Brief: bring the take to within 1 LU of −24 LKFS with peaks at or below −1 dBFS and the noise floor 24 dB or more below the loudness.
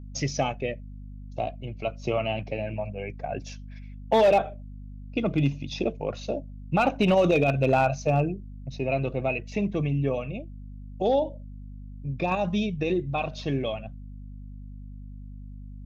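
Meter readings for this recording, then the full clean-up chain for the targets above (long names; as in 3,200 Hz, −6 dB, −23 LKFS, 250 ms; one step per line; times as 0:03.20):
share of clipped samples 0.3%; peaks flattened at −14.0 dBFS; mains hum 50 Hz; hum harmonics up to 250 Hz; level of the hum −38 dBFS; integrated loudness −27.0 LKFS; sample peak −14.0 dBFS; target loudness −24.0 LKFS
→ clipped peaks rebuilt −14 dBFS
mains-hum notches 50/100/150/200/250 Hz
level +3 dB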